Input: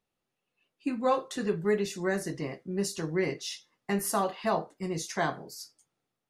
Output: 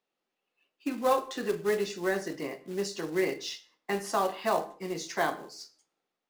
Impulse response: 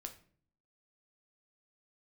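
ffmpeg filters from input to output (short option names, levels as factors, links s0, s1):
-filter_complex "[0:a]acrossover=split=220 6900:gain=0.0891 1 0.0891[s0][s1][s2];[s0][s1][s2]amix=inputs=3:normalize=0,acrusher=bits=4:mode=log:mix=0:aa=0.000001,asplit=2[s3][s4];[1:a]atrim=start_sample=2205,atrim=end_sample=6174,asetrate=27342,aresample=44100[s5];[s4][s5]afir=irnorm=-1:irlink=0,volume=0.794[s6];[s3][s6]amix=inputs=2:normalize=0,volume=0.708"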